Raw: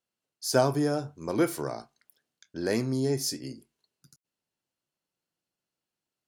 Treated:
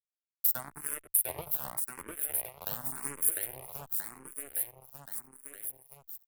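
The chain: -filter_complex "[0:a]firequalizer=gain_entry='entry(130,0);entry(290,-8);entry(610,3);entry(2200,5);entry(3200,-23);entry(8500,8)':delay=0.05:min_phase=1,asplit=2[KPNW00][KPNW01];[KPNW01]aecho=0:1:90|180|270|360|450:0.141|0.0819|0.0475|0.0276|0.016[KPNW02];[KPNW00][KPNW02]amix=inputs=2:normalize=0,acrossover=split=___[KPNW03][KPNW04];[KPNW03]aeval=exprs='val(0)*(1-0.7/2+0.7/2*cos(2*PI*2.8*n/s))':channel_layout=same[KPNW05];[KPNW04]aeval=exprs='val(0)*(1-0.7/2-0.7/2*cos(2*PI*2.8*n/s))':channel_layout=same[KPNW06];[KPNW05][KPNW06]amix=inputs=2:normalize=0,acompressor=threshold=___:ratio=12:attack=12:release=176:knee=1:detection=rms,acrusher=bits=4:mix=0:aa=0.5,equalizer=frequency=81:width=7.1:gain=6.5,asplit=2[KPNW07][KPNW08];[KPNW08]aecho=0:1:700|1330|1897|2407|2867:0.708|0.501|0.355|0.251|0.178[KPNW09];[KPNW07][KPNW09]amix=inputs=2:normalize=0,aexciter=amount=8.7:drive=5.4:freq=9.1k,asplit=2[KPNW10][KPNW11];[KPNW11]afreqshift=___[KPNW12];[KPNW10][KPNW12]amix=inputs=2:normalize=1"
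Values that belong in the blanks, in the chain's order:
950, -33dB, 0.89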